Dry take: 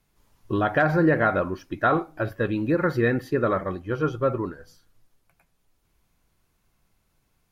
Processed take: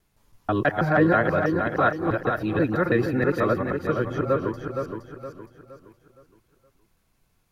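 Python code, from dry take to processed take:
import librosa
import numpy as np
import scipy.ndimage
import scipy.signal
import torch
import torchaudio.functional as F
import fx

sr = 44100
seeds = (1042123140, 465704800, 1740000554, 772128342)

y = fx.local_reverse(x, sr, ms=162.0)
y = fx.echo_feedback(y, sr, ms=467, feedback_pct=38, wet_db=-6)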